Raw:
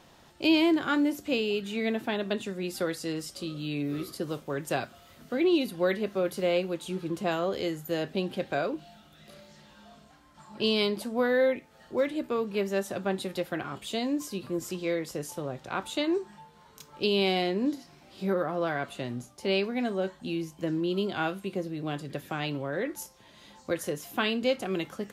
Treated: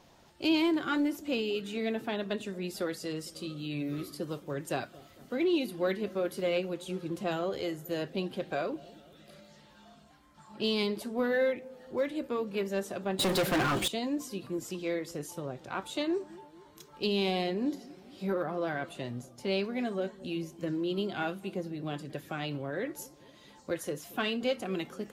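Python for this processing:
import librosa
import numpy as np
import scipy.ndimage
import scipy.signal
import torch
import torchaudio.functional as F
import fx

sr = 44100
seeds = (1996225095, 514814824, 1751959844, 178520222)

p1 = fx.spec_quant(x, sr, step_db=15)
p2 = np.clip(10.0 ** (23.5 / 20.0) * p1, -1.0, 1.0) / 10.0 ** (23.5 / 20.0)
p3 = p1 + F.gain(torch.from_numpy(p2), -11.5).numpy()
p4 = fx.echo_wet_lowpass(p3, sr, ms=227, feedback_pct=56, hz=670.0, wet_db=-19.5)
p5 = fx.leveller(p4, sr, passes=5, at=(13.19, 13.88))
y = F.gain(torch.from_numpy(p5), -5.0).numpy()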